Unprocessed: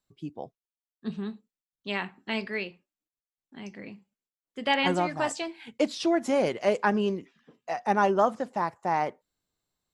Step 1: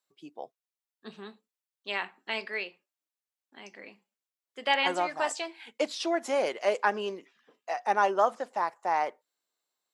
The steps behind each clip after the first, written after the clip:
high-pass filter 490 Hz 12 dB per octave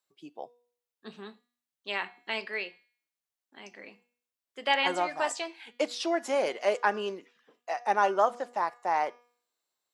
hum removal 241.7 Hz, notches 27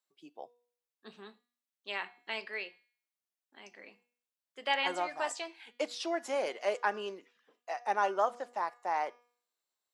high-pass filter 250 Hz 6 dB per octave
level −4.5 dB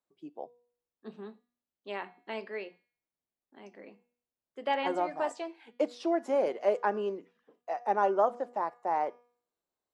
tilt shelving filter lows +10 dB, about 1,100 Hz
mains-hum notches 60/120/180 Hz

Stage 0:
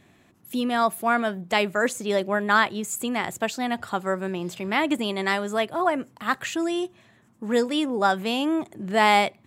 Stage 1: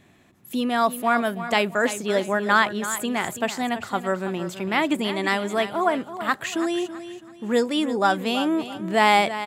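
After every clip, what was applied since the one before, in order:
repeating echo 329 ms, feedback 33%, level −12 dB
level +1 dB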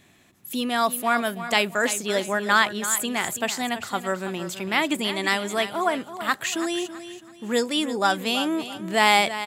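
high-shelf EQ 2,300 Hz +9.5 dB
level −3 dB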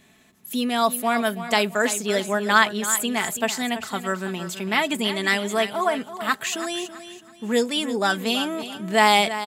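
comb filter 4.6 ms, depth 50%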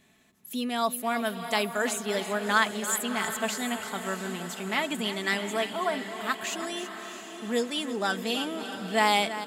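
feedback delay with all-pass diffusion 682 ms, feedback 51%, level −10 dB
level −6.5 dB

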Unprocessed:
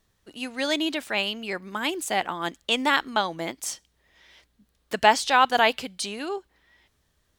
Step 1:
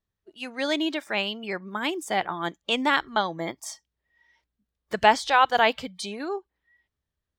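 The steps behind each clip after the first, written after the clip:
high-shelf EQ 6,100 Hz −10 dB
noise reduction from a noise print of the clip's start 17 dB
parametric band 72 Hz +4 dB 2.4 octaves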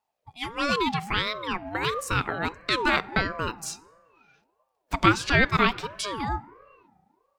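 in parallel at −0.5 dB: downward compressor, threshold −29 dBFS, peak gain reduction 16 dB
on the sum: feedback delay network reverb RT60 1.5 s, low-frequency decay 1.55×, high-frequency decay 0.4×, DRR 19 dB
ring modulator whose carrier an LFO sweeps 660 Hz, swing 30%, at 1.5 Hz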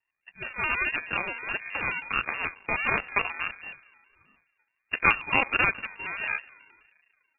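half-wave rectification
voice inversion scrambler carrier 2,600 Hz
pitch modulation by a square or saw wave square 4.7 Hz, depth 100 cents

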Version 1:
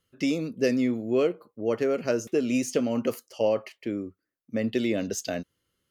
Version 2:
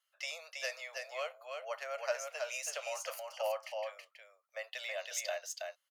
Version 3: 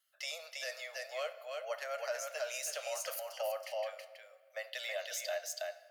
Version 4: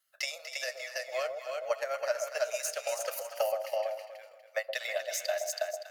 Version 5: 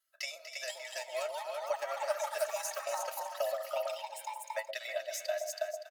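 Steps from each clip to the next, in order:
Butterworth high-pass 590 Hz 72 dB per octave; on a send: single-tap delay 324 ms −4.5 dB; on the sum: level −4.5 dB
graphic EQ with 15 bands 400 Hz −6 dB, 1,000 Hz −10 dB, 2,500 Hz −7 dB, 6,300 Hz −4 dB, 16,000 Hz +4 dB; brickwall limiter −34 dBFS, peak gain reduction 8 dB; rectangular room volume 2,400 cubic metres, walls mixed, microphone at 0.54 metres; level +5.5 dB
parametric band 3,200 Hz −6 dB 0.29 octaves; transient designer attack +9 dB, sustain −7 dB; delay that swaps between a low-pass and a high-pass 121 ms, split 830 Hz, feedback 55%, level −5 dB; level +2 dB
comb filter 3.1 ms, depth 62%; delay with pitch and tempo change per echo 532 ms, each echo +6 semitones, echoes 3, each echo −6 dB; level −6 dB

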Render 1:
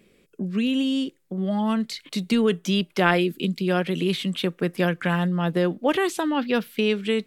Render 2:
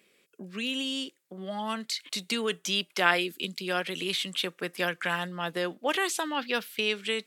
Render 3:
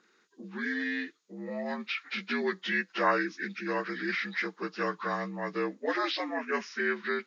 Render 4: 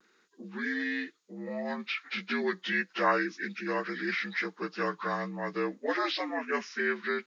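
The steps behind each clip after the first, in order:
high-pass filter 1,100 Hz 6 dB per octave; dynamic equaliser 7,100 Hz, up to +4 dB, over −48 dBFS, Q 0.8
partials spread apart or drawn together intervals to 79%; dynamic equaliser 850 Hz, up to −4 dB, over −44 dBFS, Q 2.3
pitch vibrato 0.34 Hz 19 cents

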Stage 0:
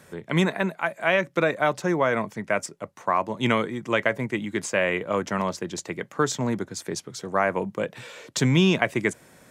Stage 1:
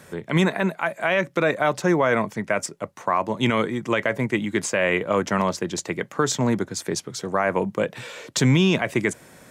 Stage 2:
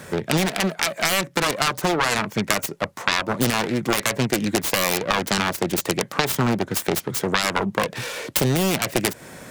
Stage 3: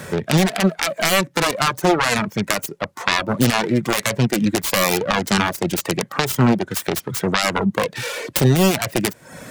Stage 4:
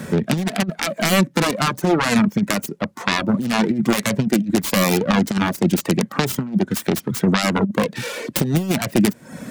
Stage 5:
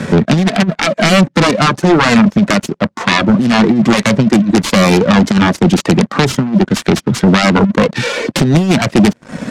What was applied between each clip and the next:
brickwall limiter −14 dBFS, peak gain reduction 8 dB; level +4.5 dB
phase distortion by the signal itself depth 0.77 ms; downward compressor, threshold −26 dBFS, peak gain reduction 11 dB; level +8.5 dB
reverb reduction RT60 0.6 s; harmonic and percussive parts rebalanced harmonic +8 dB
parametric band 220 Hz +13 dB 0.97 octaves; compressor whose output falls as the input rises −11 dBFS, ratio −0.5; level −4.5 dB
leveller curve on the samples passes 3; low-pass filter 6,000 Hz 12 dB per octave

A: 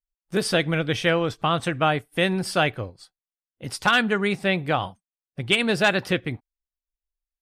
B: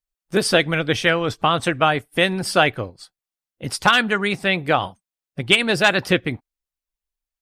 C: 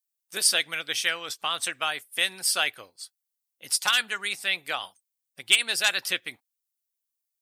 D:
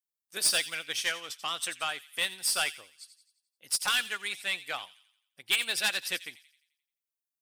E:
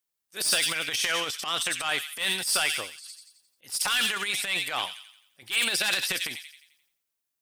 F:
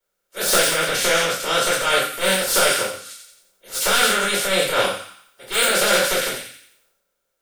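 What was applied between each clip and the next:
harmonic and percussive parts rebalanced percussive +6 dB
first difference; level +4 dB
soft clipping −18.5 dBFS, distortion −10 dB; delay with a high-pass on its return 87 ms, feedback 48%, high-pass 2,800 Hz, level −7.5 dB; expander for the loud parts 1.5 to 1, over −42 dBFS
brickwall limiter −24.5 dBFS, peak gain reduction 8 dB; transient designer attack −11 dB, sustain +9 dB; level +8 dB
ceiling on every frequency bin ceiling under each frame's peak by 17 dB; hollow resonant body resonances 530/1,400 Hz, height 16 dB, ringing for 30 ms; convolution reverb RT60 0.40 s, pre-delay 3 ms, DRR −11.5 dB; level −9 dB

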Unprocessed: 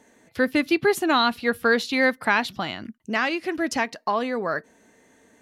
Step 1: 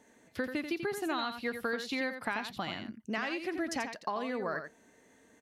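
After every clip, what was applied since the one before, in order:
downward compressor, threshold −25 dBFS, peak gain reduction 10 dB
single-tap delay 87 ms −8 dB
level −6 dB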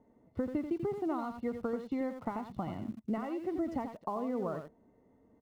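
Savitzky-Golay smoothing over 65 samples
low-shelf EQ 190 Hz +12 dB
in parallel at −8 dB: centre clipping without the shift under −44 dBFS
on the sum: level −4.5 dB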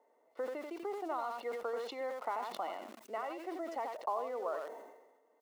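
high-pass filter 490 Hz 24 dB per octave
level that may fall only so fast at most 51 dB per second
level +1.5 dB

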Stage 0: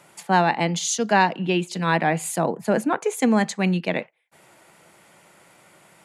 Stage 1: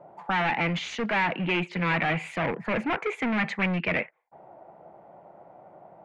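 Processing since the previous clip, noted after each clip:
gain into a clipping stage and back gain 25.5 dB
envelope-controlled low-pass 650–2,300 Hz up, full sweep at −28.5 dBFS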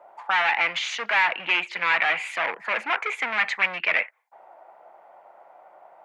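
high-pass filter 960 Hz 12 dB per octave
level +6.5 dB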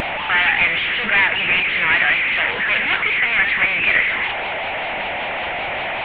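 linear delta modulator 16 kbit/s, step −19.5 dBFS
high shelf with overshoot 1,500 Hz +6.5 dB, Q 1.5
pitch vibrato 5.2 Hz 70 cents

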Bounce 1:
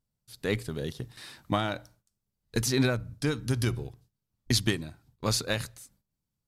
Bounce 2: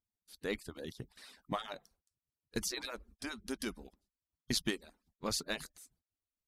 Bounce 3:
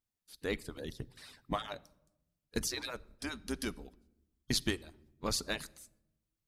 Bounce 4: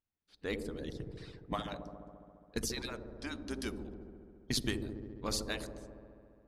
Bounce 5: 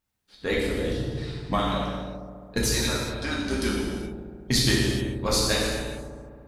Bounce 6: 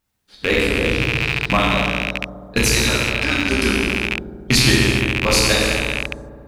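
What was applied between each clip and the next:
harmonic-percussive split with one part muted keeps percussive; level −7 dB
sub-octave generator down 2 octaves, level −4 dB; rectangular room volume 3,600 cubic metres, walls furnished, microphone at 0.36 metres; level +1.5 dB
delay with a low-pass on its return 69 ms, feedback 82%, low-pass 560 Hz, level −4 dB; low-pass that shuts in the quiet parts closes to 2,900 Hz, open at −31 dBFS; level −2 dB
reverb whose tail is shaped and stops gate 450 ms falling, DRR −4.5 dB; level +8 dB
loose part that buzzes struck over −36 dBFS, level −14 dBFS; level +7 dB

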